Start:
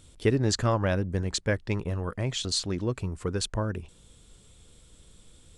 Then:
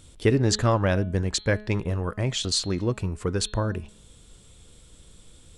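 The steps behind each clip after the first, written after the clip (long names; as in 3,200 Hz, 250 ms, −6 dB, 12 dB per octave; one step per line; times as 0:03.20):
hum removal 211.6 Hz, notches 20
level +3.5 dB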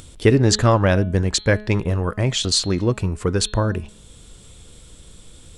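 upward compression, threshold −45 dBFS
level +6 dB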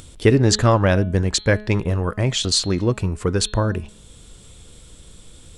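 no processing that can be heard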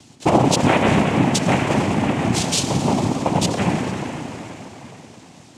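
spring reverb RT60 3.9 s, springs 32/55 ms, chirp 60 ms, DRR −1.5 dB
cochlear-implant simulation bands 4
level −2 dB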